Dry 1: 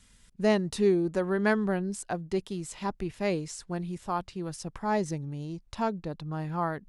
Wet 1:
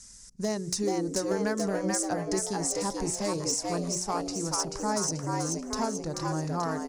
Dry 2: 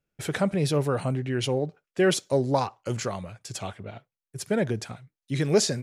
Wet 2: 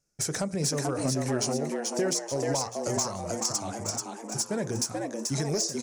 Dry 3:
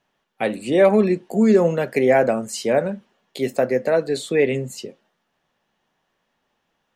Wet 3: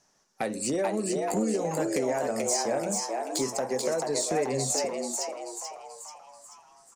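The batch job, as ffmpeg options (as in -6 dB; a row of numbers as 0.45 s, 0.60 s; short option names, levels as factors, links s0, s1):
-filter_complex "[0:a]lowpass=9500,highshelf=f=4300:t=q:w=3:g=10.5,bandreject=f=60:t=h:w=6,bandreject=f=120:t=h:w=6,bandreject=f=180:t=h:w=6,bandreject=f=240:t=h:w=6,bandreject=f=300:t=h:w=6,bandreject=f=360:t=h:w=6,bandreject=f=420:t=h:w=6,bandreject=f=480:t=h:w=6,bandreject=f=540:t=h:w=6,acompressor=threshold=0.0398:ratio=10,asoftclip=type=hard:threshold=0.0668,asplit=2[s0][s1];[s1]asplit=7[s2][s3][s4][s5][s6][s7][s8];[s2]adelay=435,afreqshift=110,volume=0.708[s9];[s3]adelay=870,afreqshift=220,volume=0.355[s10];[s4]adelay=1305,afreqshift=330,volume=0.178[s11];[s5]adelay=1740,afreqshift=440,volume=0.0881[s12];[s6]adelay=2175,afreqshift=550,volume=0.0442[s13];[s7]adelay=2610,afreqshift=660,volume=0.0221[s14];[s8]adelay=3045,afreqshift=770,volume=0.0111[s15];[s9][s10][s11][s12][s13][s14][s15]amix=inputs=7:normalize=0[s16];[s0][s16]amix=inputs=2:normalize=0,volume=1.26"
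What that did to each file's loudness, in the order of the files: +1.0 LU, -2.5 LU, -9.0 LU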